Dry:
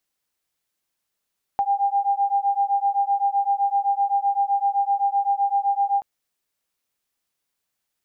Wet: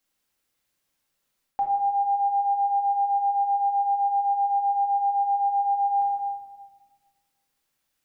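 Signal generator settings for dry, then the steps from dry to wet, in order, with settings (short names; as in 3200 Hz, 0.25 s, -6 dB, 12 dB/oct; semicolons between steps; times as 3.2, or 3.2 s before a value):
beating tones 796 Hz, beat 7.8 Hz, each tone -21.5 dBFS 4.43 s
shoebox room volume 1500 m³, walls mixed, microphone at 2.2 m; reverse; compressor 6:1, threshold -22 dBFS; reverse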